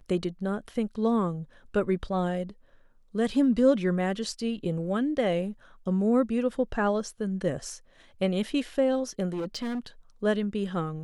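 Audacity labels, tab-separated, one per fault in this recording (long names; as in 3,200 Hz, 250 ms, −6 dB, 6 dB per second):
9.330000	9.860000	clipping −28 dBFS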